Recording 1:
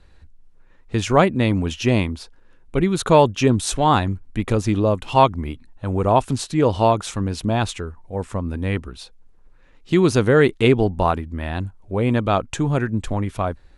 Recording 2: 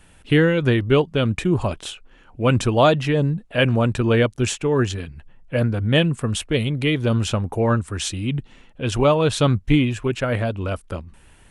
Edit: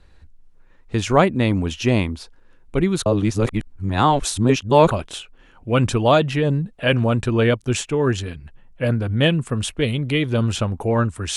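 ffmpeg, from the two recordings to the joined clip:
-filter_complex "[0:a]apad=whole_dur=11.36,atrim=end=11.36,asplit=2[s0][s1];[s0]atrim=end=3.062[s2];[s1]atrim=start=3.058:end=4.912,asetpts=PTS-STARTPTS,areverse[s3];[1:a]atrim=start=1.628:end=8.08[s4];[s2][s3]acrossfade=d=0.004:c1=hsin:c2=hsin[s5];[s5][s4]acrossfade=d=0.004:c1=hsin:c2=hsin"

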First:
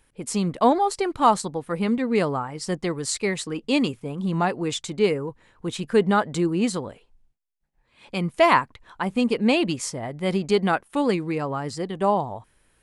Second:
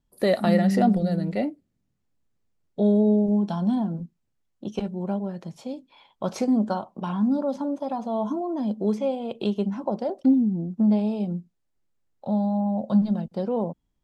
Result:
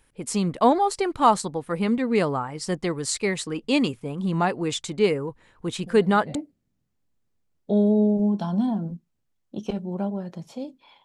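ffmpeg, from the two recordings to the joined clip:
-filter_complex "[1:a]asplit=2[s0][s1];[0:a]apad=whole_dur=11.04,atrim=end=11.04,atrim=end=6.352[s2];[s1]atrim=start=1.438:end=6.13[s3];[s0]atrim=start=0.95:end=1.44,asetpts=PTS-STARTPTS,volume=0.141,afade=t=in:d=0.004:c=hsin,afade=t=out:st=0.486:d=0.004:c=hsin,adelay=5860[s4];[s2][s3]acrossfade=d=0.004:c1=hsin:c2=hsin[s5];[s5][s4]amix=inputs=2:normalize=0"

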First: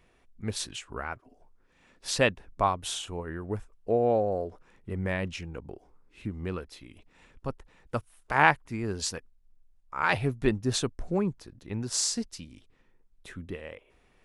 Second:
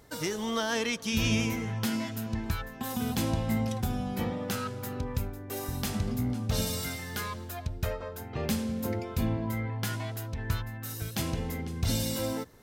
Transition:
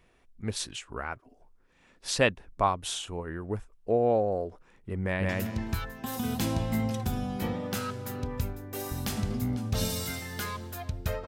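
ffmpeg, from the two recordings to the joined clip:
-filter_complex "[0:a]apad=whole_dur=11.27,atrim=end=11.27,atrim=end=5.292[s0];[1:a]atrim=start=2.058:end=8.04[s1];[s0][s1]acrossfade=d=0.004:c1=hsin:c2=hsin,asplit=2[s2][s3];[s3]afade=t=in:st=5.03:d=0.01,afade=t=out:st=5.29:d=0.01,aecho=0:1:170|340|510:0.891251|0.17825|0.03565[s4];[s2][s4]amix=inputs=2:normalize=0"

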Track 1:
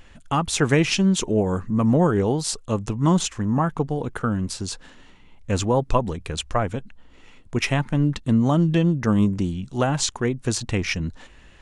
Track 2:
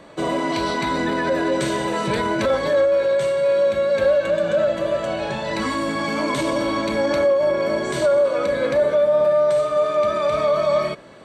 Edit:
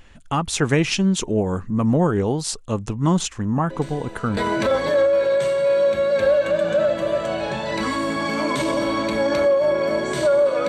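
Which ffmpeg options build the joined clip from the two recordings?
-filter_complex "[1:a]asplit=2[s0][s1];[0:a]apad=whole_dur=10.68,atrim=end=10.68,atrim=end=4.372[s2];[s1]atrim=start=2.158:end=8.47[s3];[s0]atrim=start=1.49:end=2.16,asetpts=PTS-STARTPTS,volume=0.168,afade=t=in:d=0.004:c=hsin,afade=t=out:st=0.666:d=0.004:c=hsin,adelay=3700[s4];[s2][s3]acrossfade=d=0.004:c1=hsin:c2=hsin[s5];[s5][s4]amix=inputs=2:normalize=0"

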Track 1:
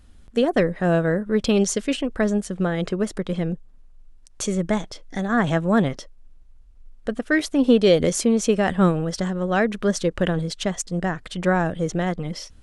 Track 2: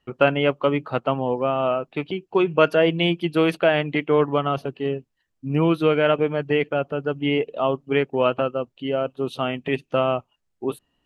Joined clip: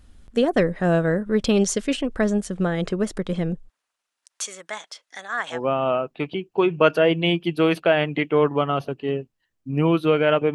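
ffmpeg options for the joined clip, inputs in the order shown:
-filter_complex "[0:a]asplit=3[s0][s1][s2];[s0]afade=t=out:st=3.68:d=0.02[s3];[s1]highpass=1100,afade=t=in:st=3.68:d=0.02,afade=t=out:st=5.62:d=0.02[s4];[s2]afade=t=in:st=5.62:d=0.02[s5];[s3][s4][s5]amix=inputs=3:normalize=0,apad=whole_dur=10.54,atrim=end=10.54,atrim=end=5.62,asetpts=PTS-STARTPTS[s6];[1:a]atrim=start=1.27:end=6.31,asetpts=PTS-STARTPTS[s7];[s6][s7]acrossfade=d=0.12:c1=tri:c2=tri"

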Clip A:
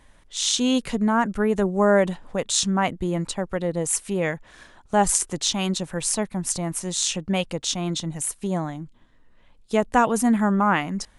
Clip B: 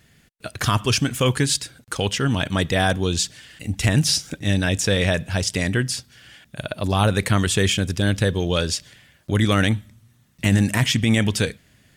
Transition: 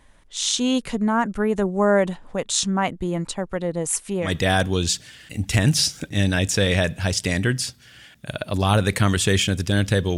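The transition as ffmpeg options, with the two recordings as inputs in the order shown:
-filter_complex "[0:a]apad=whole_dur=10.17,atrim=end=10.17,atrim=end=4.35,asetpts=PTS-STARTPTS[s0];[1:a]atrim=start=2.49:end=8.47,asetpts=PTS-STARTPTS[s1];[s0][s1]acrossfade=d=0.16:c1=tri:c2=tri"

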